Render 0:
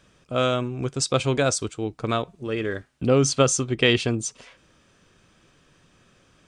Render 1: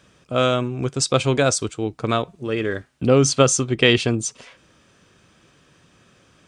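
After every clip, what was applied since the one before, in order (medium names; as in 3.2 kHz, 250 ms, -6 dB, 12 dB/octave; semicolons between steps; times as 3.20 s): high-pass 56 Hz; trim +3.5 dB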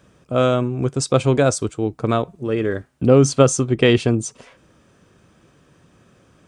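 peaking EQ 3.8 kHz -9 dB 2.8 oct; trim +3.5 dB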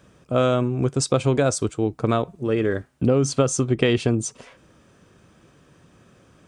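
compression 6:1, threshold -15 dBFS, peak gain reduction 8 dB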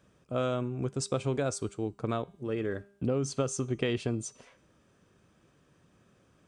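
feedback comb 200 Hz, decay 0.71 s, harmonics all, mix 40%; trim -6.5 dB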